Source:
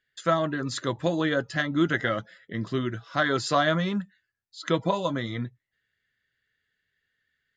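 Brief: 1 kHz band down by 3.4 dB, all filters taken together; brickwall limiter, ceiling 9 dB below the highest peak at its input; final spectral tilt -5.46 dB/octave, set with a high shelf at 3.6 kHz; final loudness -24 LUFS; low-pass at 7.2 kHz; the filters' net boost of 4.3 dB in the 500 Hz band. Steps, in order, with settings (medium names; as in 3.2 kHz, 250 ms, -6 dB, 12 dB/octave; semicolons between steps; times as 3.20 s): low-pass 7.2 kHz; peaking EQ 500 Hz +7.5 dB; peaking EQ 1 kHz -7 dB; treble shelf 3.6 kHz -6.5 dB; trim +4.5 dB; peak limiter -12 dBFS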